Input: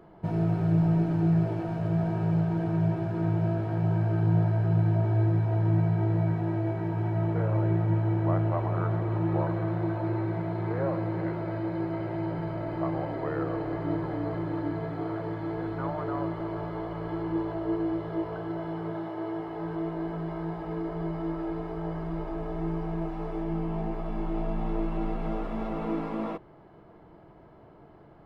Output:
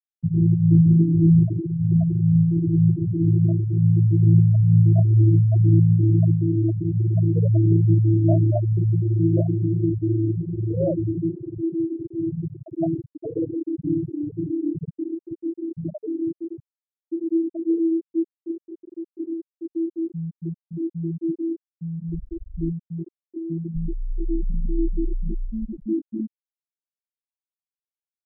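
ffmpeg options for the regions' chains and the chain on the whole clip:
ffmpeg -i in.wav -filter_complex "[0:a]asettb=1/sr,asplit=3[link_01][link_02][link_03];[link_01]atrim=end=22.724[link_04];[link_02]atrim=start=22.72:end=23.75,asetpts=PTS-STARTPTS,afade=type=in:duration=0.004:curve=qsin,afade=type=out:start_time=1.026:duration=0.004:curve=qsin,highpass=frequency=130:poles=1,aemphasis=mode=production:type=50fm[link_05];[link_03]atrim=start=23.746[link_06];[link_04][link_05]acrossfade=duration=0.004:curve1=hsin:curve2=qsin[link_07];[link_07][link_06]acrossfade=duration=0.004:curve1=qsin:curve2=hsin,lowpass=3400,afftfilt=real='re*gte(hypot(re,im),0.2)':imag='im*gte(hypot(re,im),0.2)':win_size=1024:overlap=0.75,volume=9dB" out.wav

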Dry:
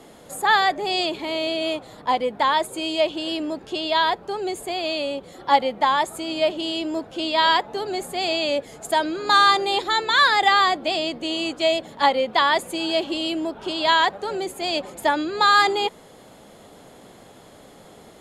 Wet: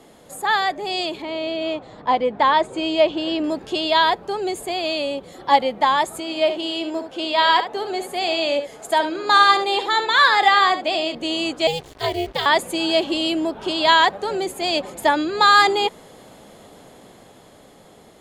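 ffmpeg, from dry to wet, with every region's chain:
ffmpeg -i in.wav -filter_complex "[0:a]asettb=1/sr,asplit=3[link_01][link_02][link_03];[link_01]atrim=end=1.224[link_04];[link_02]atrim=start=1.22:end=3.44,asetpts=PTS-STARTPTS,afade=type=in:duration=0.004:curve=qsin,afade=type=out:start_time=2.216:duration=0.004:curve=qsin,lowpass=frequency=8100:width=0.5412,lowpass=frequency=8100:width=1.3066,highshelf=frequency=4400:gain=-12[link_05];[link_03]atrim=start=3.436[link_06];[link_04][link_05]acrossfade=duration=0.004:curve1=hsin:curve2=qsin[link_07];[link_07][link_06]acrossfade=duration=0.004:curve1=qsin:curve2=hsin,asettb=1/sr,asplit=3[link_08][link_09][link_10];[link_08]atrim=end=6.204[link_11];[link_09]atrim=start=6.2:end=11.15,asetpts=PTS-STARTPTS,afade=type=in:duration=0.004:curve=qsin,afade=type=out:start_time=4.946:duration=0.004:curve=qsin,bass=frequency=250:gain=-9,treble=frequency=4000:gain=-4,aecho=1:1:70:0.316,atrim=end_sample=218295[link_12];[link_10]atrim=start=11.146[link_13];[link_11][link_12]acrossfade=duration=0.004:curve1=hsin:curve2=qsin[link_14];[link_14][link_13]acrossfade=duration=0.004:curve1=qsin:curve2=hsin,asettb=1/sr,asplit=3[link_15][link_16][link_17];[link_15]atrim=end=11.674[link_18];[link_16]atrim=start=11.67:end=12.46,asetpts=PTS-STARTPTS,afade=type=in:duration=0.004:curve=qsin,afade=type=out:start_time=0.786:duration=0.004:curve=qsin,aeval=exprs='val(0)*sin(2*PI*170*n/s)':channel_layout=same,equalizer=frequency=1200:width_type=o:width=1.1:gain=-13.5,acrusher=bits=6:mix=0:aa=0.5[link_19];[link_17]atrim=start=12.456[link_20];[link_18][link_19]acrossfade=duration=0.004:curve1=hsin:curve2=qsin[link_21];[link_21][link_20]acrossfade=duration=0.004:curve1=qsin:curve2=hsin,bandreject=frequency=1400:width=29,dynaudnorm=framelen=350:gausssize=11:maxgain=11.5dB,volume=-2dB" out.wav

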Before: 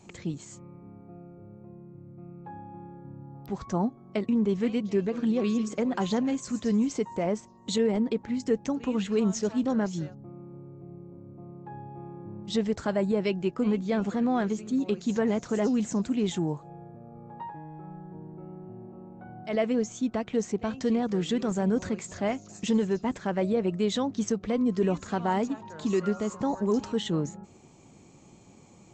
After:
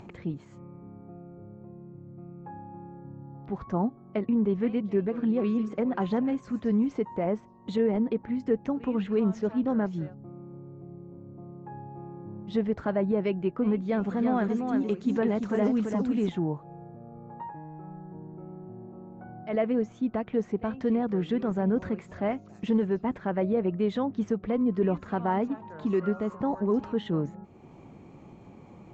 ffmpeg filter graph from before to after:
ffmpeg -i in.wav -filter_complex "[0:a]asettb=1/sr,asplit=3[link_01][link_02][link_03];[link_01]atrim=end=13.774[link_04];[link_02]atrim=start=13.77:end=16.29,asetpts=PTS-STARTPTS,afade=type=in:duration=0.004:curve=qsin,afade=type=out:start_time=2.516:duration=0.004:curve=qsin,aemphasis=mode=production:type=50fm,aecho=1:1:338:0.531,atrim=end_sample=111132[link_05];[link_03]atrim=start=16.286[link_06];[link_04][link_05]acrossfade=duration=0.004:curve1=hsin:curve2=qsin[link_07];[link_07][link_06]acrossfade=duration=0.004:curve1=qsin:curve2=hsin,lowpass=2000,acompressor=mode=upward:threshold=-41dB:ratio=2.5" out.wav

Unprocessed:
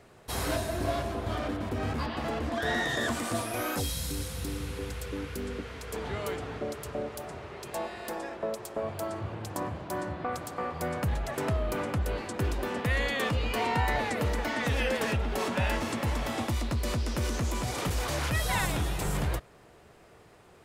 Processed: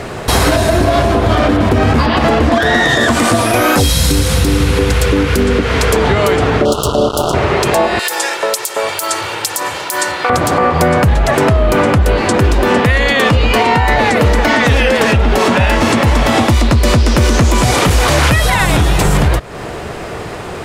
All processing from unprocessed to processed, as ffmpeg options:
ffmpeg -i in.wav -filter_complex "[0:a]asettb=1/sr,asplit=3[link_01][link_02][link_03];[link_01]atrim=end=6.654[link_04];[link_02]atrim=start=6.65:end=7.34,asetpts=PTS-STARTPTS,afade=type=in:duration=0.004:curve=qsin,afade=type=out:start_time=0.686:duration=0.004:curve=qsin,acrusher=bits=5:mix=0:aa=0.5,asuperstop=centerf=2000:order=12:qfactor=1.4[link_05];[link_03]atrim=start=7.336[link_06];[link_04][link_05]acrossfade=duration=0.004:curve1=hsin:curve2=qsin[link_07];[link_07][link_06]acrossfade=duration=0.004:curve1=qsin:curve2=hsin,asettb=1/sr,asplit=3[link_08][link_09][link_10];[link_08]atrim=end=7.994[link_11];[link_09]atrim=start=7.99:end=10.3,asetpts=PTS-STARTPTS,afade=type=in:duration=0.004:curve=qsin,afade=type=out:start_time=2.306:duration=0.004:curve=qsin,aderivative,aecho=1:1:2.2:0.44,atrim=end_sample=101871,acontrast=67[link_12];[link_10]atrim=start=10.296[link_13];[link_11][link_12]acrossfade=duration=0.004:curve1=hsin:curve2=qsin[link_14];[link_14][link_13]acrossfade=duration=0.004:curve1=qsin:curve2=hsin,asettb=1/sr,asplit=3[link_15][link_16][link_17];[link_15]atrim=end=17.584[link_18];[link_16]atrim=start=17.58:end=18.77,asetpts=PTS-STARTPTS,afade=type=in:duration=0.004:curve=qsin,afade=type=out:start_time=1.186:duration=0.004:curve=qsin,acrossover=split=3500[link_19][link_20];[link_20]acompressor=threshold=-45dB:ratio=4:attack=1:release=60[link_21];[link_19][link_21]amix=inputs=2:normalize=0,equalizer=frequency=11000:width_type=o:width=2:gain=9.5[link_22];[link_17]atrim=start=18.766[link_23];[link_18][link_22]acrossfade=duration=0.004:curve1=hsin:curve2=qsin[link_24];[link_24][link_23]acrossfade=duration=0.004:curve1=qsin:curve2=hsin,highshelf=frequency=11000:gain=-10,acompressor=threshold=-40dB:ratio=5,alimiter=level_in=32.5dB:limit=-1dB:release=50:level=0:latency=1,volume=-1dB" out.wav

